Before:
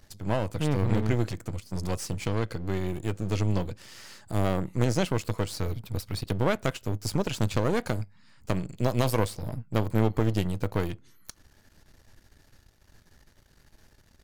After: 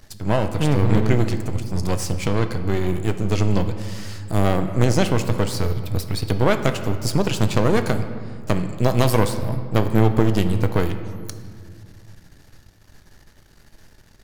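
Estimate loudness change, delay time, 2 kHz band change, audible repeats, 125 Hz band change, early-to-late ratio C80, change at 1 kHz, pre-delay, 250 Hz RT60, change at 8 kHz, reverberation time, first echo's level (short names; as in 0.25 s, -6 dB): +7.5 dB, none, +7.5 dB, none, +7.5 dB, 11.0 dB, +8.0 dB, 3 ms, 3.0 s, +7.0 dB, 2.0 s, none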